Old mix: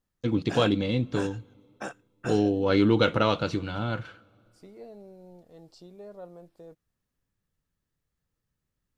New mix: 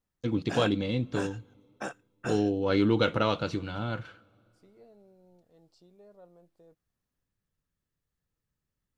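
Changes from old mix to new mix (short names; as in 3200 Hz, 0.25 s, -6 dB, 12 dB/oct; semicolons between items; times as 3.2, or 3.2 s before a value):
first voice -3.0 dB; second voice -10.5 dB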